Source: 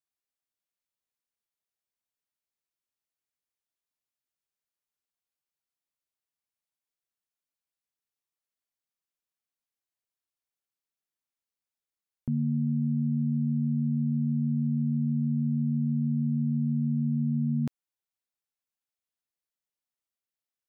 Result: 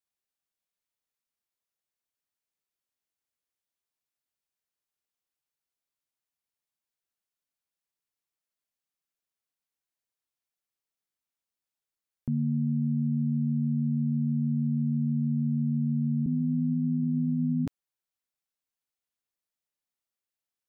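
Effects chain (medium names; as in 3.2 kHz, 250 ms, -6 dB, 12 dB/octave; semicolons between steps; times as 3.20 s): 16.26–17.67 s: formants replaced by sine waves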